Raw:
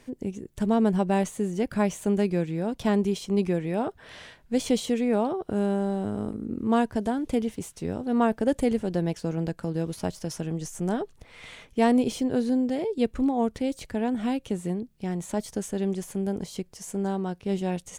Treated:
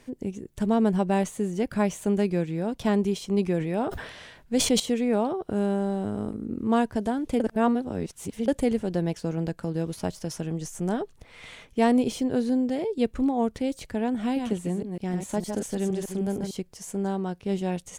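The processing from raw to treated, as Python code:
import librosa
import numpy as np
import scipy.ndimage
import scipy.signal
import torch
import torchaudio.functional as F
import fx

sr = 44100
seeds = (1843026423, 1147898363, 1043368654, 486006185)

y = fx.sustainer(x, sr, db_per_s=62.0, at=(3.54, 4.8))
y = fx.reverse_delay(y, sr, ms=154, wet_db=-5.0, at=(14.21, 16.51))
y = fx.edit(y, sr, fx.reverse_span(start_s=7.4, length_s=1.08), tone=tone)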